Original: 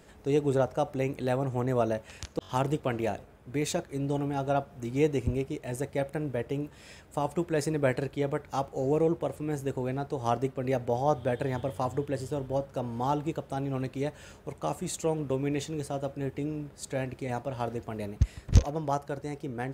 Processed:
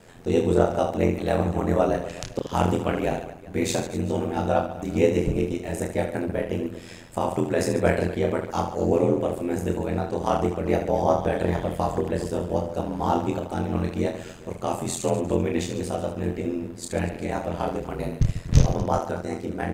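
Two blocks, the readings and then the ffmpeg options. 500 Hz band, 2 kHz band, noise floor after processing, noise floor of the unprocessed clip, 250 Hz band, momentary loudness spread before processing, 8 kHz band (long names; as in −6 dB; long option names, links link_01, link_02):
+5.5 dB, +5.5 dB, −41 dBFS, −53 dBFS, +6.5 dB, 8 LU, +5.5 dB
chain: -af "aecho=1:1:30|75|142.5|243.8|395.6:0.631|0.398|0.251|0.158|0.1,aeval=exprs='val(0)*sin(2*PI*43*n/s)':channel_layout=same,volume=6.5dB"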